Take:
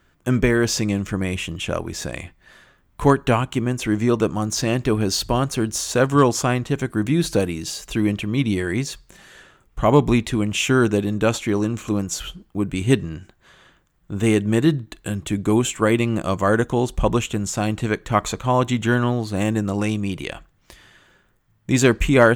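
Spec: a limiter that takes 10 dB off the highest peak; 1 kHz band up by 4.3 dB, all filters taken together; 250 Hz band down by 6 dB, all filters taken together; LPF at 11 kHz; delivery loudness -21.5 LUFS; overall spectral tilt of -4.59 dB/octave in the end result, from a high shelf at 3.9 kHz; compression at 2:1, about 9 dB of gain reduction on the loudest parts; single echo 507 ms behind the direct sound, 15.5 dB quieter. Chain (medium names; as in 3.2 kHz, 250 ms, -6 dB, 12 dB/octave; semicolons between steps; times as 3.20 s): low-pass 11 kHz; peaking EQ 250 Hz -8.5 dB; peaking EQ 1 kHz +6 dB; treble shelf 3.9 kHz -4 dB; compression 2:1, threshold -26 dBFS; peak limiter -19 dBFS; delay 507 ms -15.5 dB; trim +9 dB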